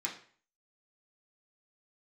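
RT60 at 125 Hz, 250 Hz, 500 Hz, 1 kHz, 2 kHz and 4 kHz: 0.50, 0.45, 0.45, 0.45, 0.50, 0.40 seconds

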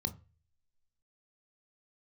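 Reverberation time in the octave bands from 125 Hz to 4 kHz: 0.55, 0.30, 0.35, 0.30, 0.40, 0.30 seconds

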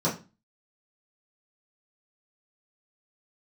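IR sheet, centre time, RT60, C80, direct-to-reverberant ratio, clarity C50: 23 ms, 0.30 s, 16.5 dB, −9.5 dB, 10.0 dB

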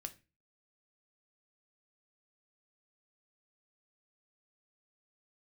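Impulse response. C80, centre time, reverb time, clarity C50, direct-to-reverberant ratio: 23.0 dB, 6 ms, 0.30 s, 17.0 dB, 8.0 dB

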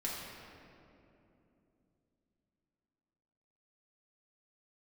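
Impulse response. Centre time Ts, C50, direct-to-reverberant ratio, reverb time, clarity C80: 123 ms, 0.0 dB, −6.0 dB, 2.9 s, 1.0 dB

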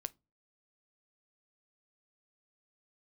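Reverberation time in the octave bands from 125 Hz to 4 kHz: 0.45, 0.40, 0.30, 0.25, 0.15, 0.15 seconds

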